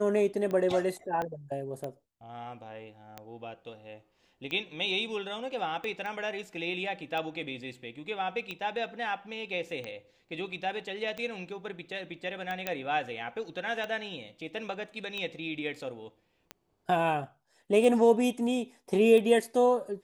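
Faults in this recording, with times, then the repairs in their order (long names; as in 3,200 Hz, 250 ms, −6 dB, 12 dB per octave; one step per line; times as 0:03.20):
scratch tick 45 rpm −23 dBFS
0:01.22: click −21 dBFS
0:06.06: click −27 dBFS
0:12.67: click −15 dBFS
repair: click removal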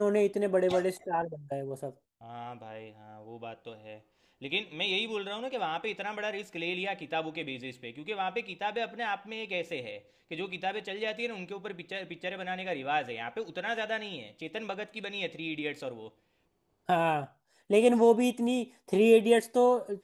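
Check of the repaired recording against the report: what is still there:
0:01.22: click
0:12.67: click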